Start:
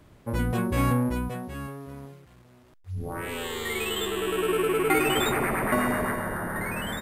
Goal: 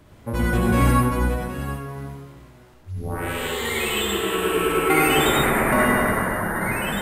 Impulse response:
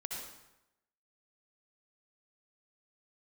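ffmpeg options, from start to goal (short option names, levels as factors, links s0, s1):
-filter_complex "[0:a]acontrast=27[s0];[1:a]atrim=start_sample=2205[s1];[s0][s1]afir=irnorm=-1:irlink=0,volume=1.19"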